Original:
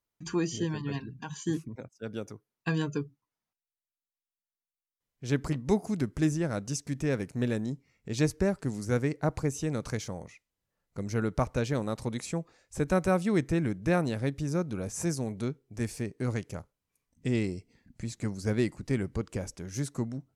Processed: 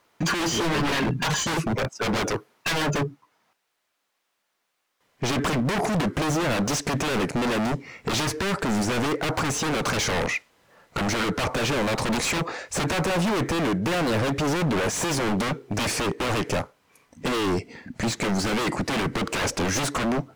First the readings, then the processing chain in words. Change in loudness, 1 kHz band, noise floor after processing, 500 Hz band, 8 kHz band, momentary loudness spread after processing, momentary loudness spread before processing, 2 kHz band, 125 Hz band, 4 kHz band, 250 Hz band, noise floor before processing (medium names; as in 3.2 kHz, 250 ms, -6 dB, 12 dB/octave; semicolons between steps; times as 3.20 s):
+6.5 dB, +13.0 dB, -76 dBFS, +5.5 dB, +11.5 dB, 5 LU, 12 LU, +13.0 dB, +3.0 dB, +17.0 dB, +4.5 dB, under -85 dBFS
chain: overdrive pedal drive 34 dB, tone 1.5 kHz, clips at -12 dBFS; gain riding within 4 dB 0.5 s; wavefolder -23 dBFS; trim +4 dB